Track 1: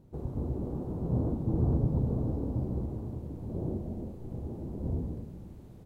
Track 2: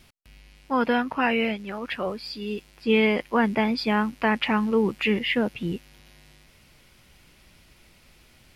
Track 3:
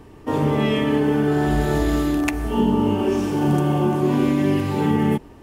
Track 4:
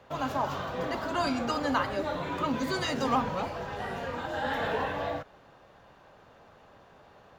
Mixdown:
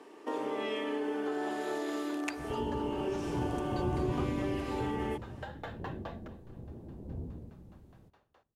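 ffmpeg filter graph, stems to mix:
ffmpeg -i stem1.wav -i stem2.wav -i stem3.wav -i stem4.wav -filter_complex "[0:a]adelay=2250,volume=-8dB,asplit=2[link_01][link_02];[link_02]volume=-23dB[link_03];[2:a]lowpass=10000,volume=-4dB[link_04];[3:a]aeval=exprs='val(0)*pow(10,-35*if(lt(mod(4.8*n/s,1),2*abs(4.8)/1000),1-mod(4.8*n/s,1)/(2*abs(4.8)/1000),(mod(4.8*n/s,1)-2*abs(4.8)/1000)/(1-2*abs(4.8)/1000))/20)':channel_layout=same,adelay=1050,volume=-4dB,asplit=2[link_05][link_06];[link_06]volume=-18.5dB[link_07];[link_04][link_05]amix=inputs=2:normalize=0,highpass=frequency=310:width=0.5412,highpass=frequency=310:width=1.3066,acompressor=threshold=-38dB:ratio=2,volume=0dB[link_08];[link_03][link_07]amix=inputs=2:normalize=0,aecho=0:1:235|470|705|940|1175|1410:1|0.45|0.202|0.0911|0.041|0.0185[link_09];[link_01][link_08][link_09]amix=inputs=3:normalize=0" out.wav

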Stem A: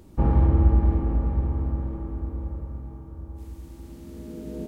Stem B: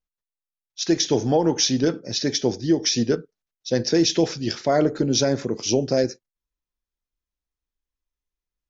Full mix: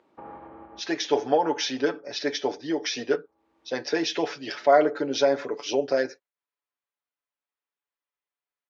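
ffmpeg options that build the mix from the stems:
ffmpeg -i stem1.wav -i stem2.wav -filter_complex "[0:a]alimiter=limit=-17dB:level=0:latency=1:release=394,volume=-2dB[link_01];[1:a]aecho=1:1:7:0.69,volume=2.5dB,asplit=2[link_02][link_03];[link_03]apad=whole_len=206195[link_04];[link_01][link_04]sidechaincompress=threshold=-27dB:ratio=12:attack=5.6:release=551[link_05];[link_05][link_02]amix=inputs=2:normalize=0,highpass=610,lowpass=2500" out.wav

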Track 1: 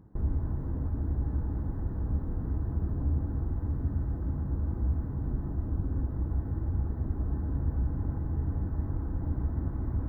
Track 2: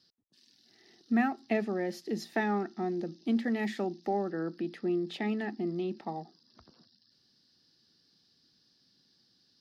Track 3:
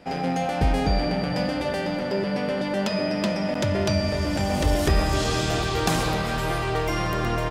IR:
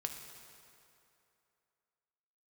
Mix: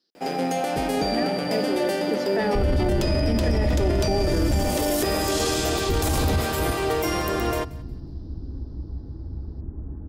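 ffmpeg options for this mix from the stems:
-filter_complex "[0:a]lowshelf=frequency=140:gain=9.5,adelay=2400,volume=2.5dB,asplit=2[link_01][link_02];[link_02]volume=-15dB[link_03];[1:a]highpass=300,dynaudnorm=framelen=540:gausssize=7:maxgain=9.5dB,volume=-6.5dB,asplit=3[link_04][link_05][link_06];[link_04]atrim=end=4.6,asetpts=PTS-STARTPTS,afade=type=out:start_time=4.596:duration=0.004:curve=hsin[link_07];[link_05]atrim=start=4.6:end=5.89,asetpts=PTS-STARTPTS,volume=0[link_08];[link_06]atrim=start=5.89,asetpts=PTS-STARTPTS,afade=type=in:duration=0.004:curve=hsin[link_09];[link_07][link_08][link_09]concat=n=3:v=0:a=1,asplit=2[link_10][link_11];[2:a]aemphasis=mode=production:type=bsi,adelay=150,volume=-2.5dB,asplit=2[link_12][link_13];[link_13]volume=-21.5dB[link_14];[link_11]apad=whole_len=550712[link_15];[link_01][link_15]sidechaingate=range=-33dB:threshold=-56dB:ratio=16:detection=peak[link_16];[link_03][link_14]amix=inputs=2:normalize=0,aecho=0:1:180|360|540|720:1|0.24|0.0576|0.0138[link_17];[link_16][link_10][link_12][link_17]amix=inputs=4:normalize=0,equalizer=frequency=350:width_type=o:width=1.8:gain=9.5,alimiter=limit=-14dB:level=0:latency=1:release=12"

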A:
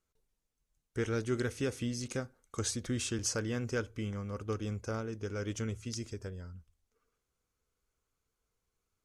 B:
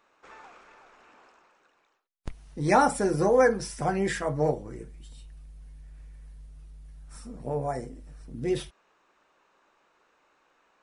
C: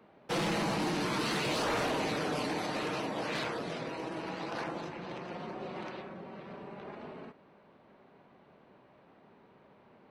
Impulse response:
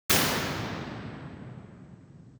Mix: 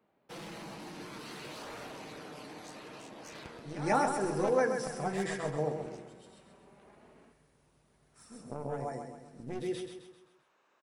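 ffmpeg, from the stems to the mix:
-filter_complex "[0:a]highpass=260,tremolo=f=81:d=0.889,volume=-9dB,asplit=2[link_01][link_02];[1:a]highpass=110,adelay=1050,volume=-0.5dB,asplit=2[link_03][link_04];[link_04]volume=-7.5dB[link_05];[2:a]highshelf=frequency=9200:gain=8,volume=-14dB,asplit=2[link_06][link_07];[link_07]volume=-12.5dB[link_08];[link_02]apad=whole_len=523471[link_09];[link_03][link_09]sidechaincompress=threshold=-58dB:ratio=8:attack=12:release=161[link_10];[link_01][link_10]amix=inputs=2:normalize=0,aeval=exprs='0.211*(cos(1*acos(clip(val(0)/0.211,-1,1)))-cos(1*PI/2))+0.0422*(cos(3*acos(clip(val(0)/0.211,-1,1)))-cos(3*PI/2))+0.015*(cos(6*acos(clip(val(0)/0.211,-1,1)))-cos(6*PI/2))':channel_layout=same,acompressor=threshold=-38dB:ratio=3,volume=0dB[link_11];[link_05][link_08]amix=inputs=2:normalize=0,aecho=0:1:131|262|393|524|655|786:1|0.45|0.202|0.0911|0.041|0.0185[link_12];[link_06][link_11][link_12]amix=inputs=3:normalize=0"

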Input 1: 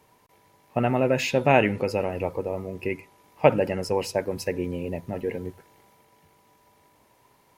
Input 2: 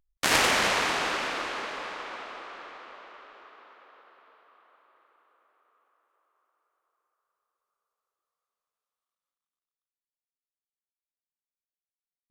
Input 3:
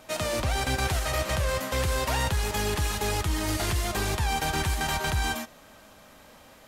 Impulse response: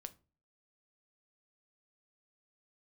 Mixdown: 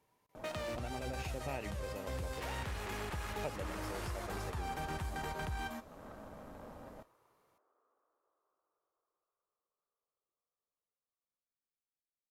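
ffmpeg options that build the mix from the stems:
-filter_complex "[0:a]volume=-18dB,asplit=3[link_01][link_02][link_03];[link_02]volume=-4.5dB[link_04];[1:a]acrossover=split=190[link_05][link_06];[link_06]acompressor=threshold=-36dB:ratio=2[link_07];[link_05][link_07]amix=inputs=2:normalize=0,adelay=2100,volume=0dB[link_08];[2:a]adelay=350,volume=3dB,asplit=2[link_09][link_10];[link_10]volume=-10dB[link_11];[link_03]apad=whole_len=309858[link_12];[link_09][link_12]sidechaincompress=threshold=-53dB:ratio=8:attack=16:release=820[link_13];[link_08][link_13]amix=inputs=2:normalize=0,adynamicsmooth=sensitivity=7:basefreq=690,alimiter=level_in=5.5dB:limit=-24dB:level=0:latency=1:release=368,volume=-5.5dB,volume=0dB[link_14];[3:a]atrim=start_sample=2205[link_15];[link_04][link_11]amix=inputs=2:normalize=0[link_16];[link_16][link_15]afir=irnorm=-1:irlink=0[link_17];[link_01][link_14][link_17]amix=inputs=3:normalize=0,acompressor=threshold=-42dB:ratio=2"

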